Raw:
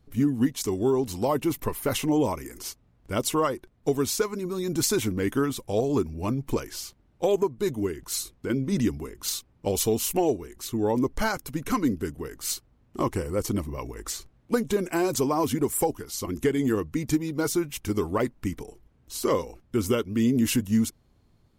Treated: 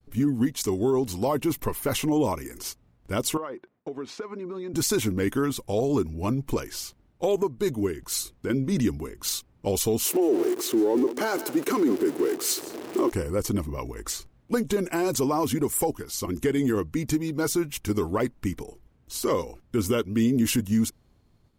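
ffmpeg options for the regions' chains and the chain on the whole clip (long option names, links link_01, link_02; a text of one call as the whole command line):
ffmpeg -i in.wav -filter_complex "[0:a]asettb=1/sr,asplit=3[link_01][link_02][link_03];[link_01]atrim=end=3.374[link_04];[link_02]atrim=start=3.37:end=4.74,asetpts=PTS-STARTPTS,afade=type=in:duration=0.004:curve=qsin,afade=type=out:start_time=1.366:duration=0.004:curve=qsin,highpass=230,lowpass=2400,acompressor=threshold=-33dB:ratio=4:attack=3.2:release=140:knee=1:detection=peak[link_05];[link_03]atrim=start=4.736[link_06];[link_04][link_05]acrossfade=duration=0.004:curve1=hsin:curve2=qsin[link_07];[link_07][link_06]acrossfade=duration=0.004:curve1=qsin:curve2=hsin,asettb=1/sr,asplit=3[link_08][link_09][link_10];[link_08]atrim=end=10.054[link_11];[link_09]atrim=start=10.05:end=13.12,asetpts=PTS-STARTPTS,afade=type=in:duration=0.004:curve=qsin,afade=type=out:start_time=3.066:duration=0.004:curve=qsin,aeval=exprs='val(0)+0.5*0.0224*sgn(val(0))':channel_layout=same,highpass=frequency=350:width_type=q:width=4.1,aecho=1:1:165:0.119,atrim=end_sample=135387[link_12];[link_10]atrim=start=13.116[link_13];[link_11][link_12]acrossfade=duration=0.004:curve1=hsin:curve2=qsin[link_14];[link_14][link_13]acrossfade=duration=0.004:curve1=qsin:curve2=hsin,agate=range=-33dB:threshold=-59dB:ratio=3:detection=peak,alimiter=limit=-17dB:level=0:latency=1:release=24,volume=1.5dB" out.wav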